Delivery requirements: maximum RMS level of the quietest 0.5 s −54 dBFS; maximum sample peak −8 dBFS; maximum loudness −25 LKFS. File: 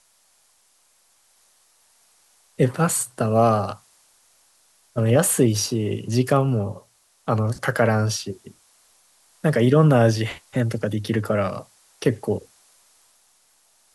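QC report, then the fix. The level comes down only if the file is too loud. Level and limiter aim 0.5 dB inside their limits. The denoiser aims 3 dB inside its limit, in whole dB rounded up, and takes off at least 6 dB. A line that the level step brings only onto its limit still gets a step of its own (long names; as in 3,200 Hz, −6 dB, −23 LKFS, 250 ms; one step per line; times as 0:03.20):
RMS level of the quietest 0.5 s −61 dBFS: in spec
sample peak −6.0 dBFS: out of spec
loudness −21.5 LKFS: out of spec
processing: level −4 dB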